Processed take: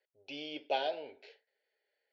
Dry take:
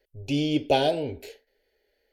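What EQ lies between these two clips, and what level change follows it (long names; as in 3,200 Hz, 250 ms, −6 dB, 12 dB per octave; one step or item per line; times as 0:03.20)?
high-pass filter 740 Hz 12 dB per octave
transistor ladder low-pass 6,300 Hz, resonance 55%
high-frequency loss of the air 350 metres
+5.0 dB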